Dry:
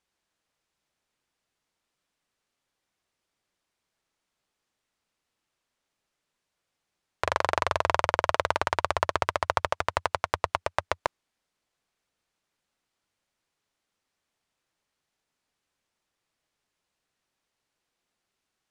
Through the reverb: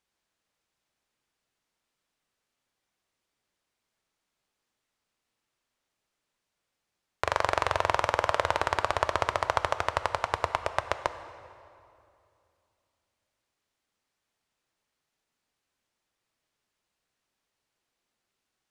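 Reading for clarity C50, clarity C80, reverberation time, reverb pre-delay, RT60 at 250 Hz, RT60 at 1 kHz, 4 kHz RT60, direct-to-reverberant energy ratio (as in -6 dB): 11.5 dB, 12.0 dB, 2.6 s, 3 ms, 3.0 s, 2.5 s, 1.9 s, 10.0 dB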